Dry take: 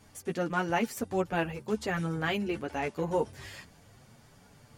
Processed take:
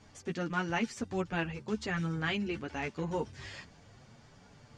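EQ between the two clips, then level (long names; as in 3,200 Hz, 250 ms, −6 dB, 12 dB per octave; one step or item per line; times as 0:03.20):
low-pass filter 6,900 Hz 24 dB per octave
dynamic equaliser 600 Hz, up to −8 dB, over −44 dBFS, Q 0.88
0.0 dB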